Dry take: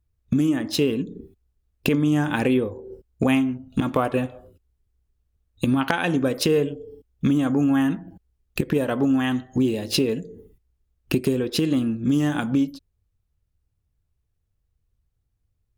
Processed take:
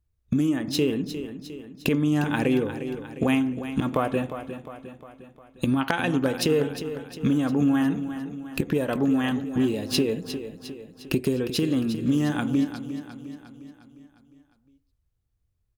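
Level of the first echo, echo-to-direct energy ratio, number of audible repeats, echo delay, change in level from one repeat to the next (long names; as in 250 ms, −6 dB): −11.0 dB, −9.5 dB, 5, 355 ms, −5.5 dB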